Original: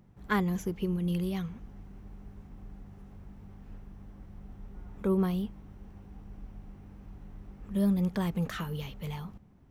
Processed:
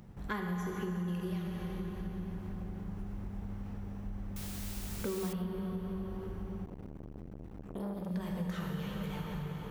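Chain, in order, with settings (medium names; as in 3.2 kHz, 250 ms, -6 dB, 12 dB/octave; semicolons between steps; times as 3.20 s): expander -48 dBFS; upward compressor, threshold -39 dBFS; plate-style reverb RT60 4.1 s, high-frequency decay 0.7×, DRR -1 dB; compression 4:1, threshold -37 dBFS, peak gain reduction 14.5 dB; 4.36–5.33 s: word length cut 8-bit, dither triangular; 6.65–8.11 s: transformer saturation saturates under 480 Hz; trim +1.5 dB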